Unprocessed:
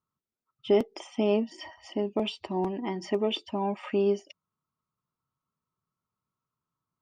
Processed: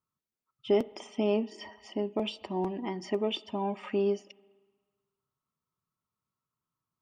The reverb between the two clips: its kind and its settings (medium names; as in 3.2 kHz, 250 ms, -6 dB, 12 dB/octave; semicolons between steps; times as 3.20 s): spring tank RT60 1.5 s, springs 38/56 ms, chirp 50 ms, DRR 20 dB; trim -2.5 dB